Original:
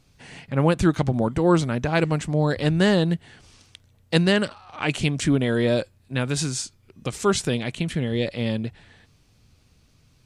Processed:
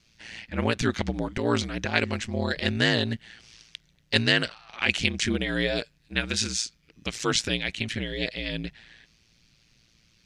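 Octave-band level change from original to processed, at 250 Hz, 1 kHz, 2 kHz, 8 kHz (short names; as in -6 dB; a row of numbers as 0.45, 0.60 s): -7.0, -5.5, +2.5, -0.5 dB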